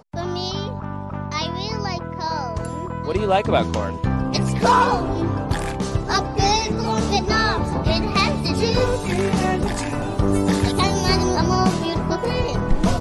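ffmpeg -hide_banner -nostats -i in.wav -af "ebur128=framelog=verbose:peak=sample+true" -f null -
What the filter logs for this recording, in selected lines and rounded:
Integrated loudness:
  I:         -21.2 LUFS
  Threshold: -31.2 LUFS
Loudness range:
  LRA:         3.7 LU
  Threshold: -40.9 LUFS
  LRA low:   -23.7 LUFS
  LRA high:  -20.0 LUFS
Sample peak:
  Peak:       -5.1 dBFS
True peak:
  Peak:       -5.1 dBFS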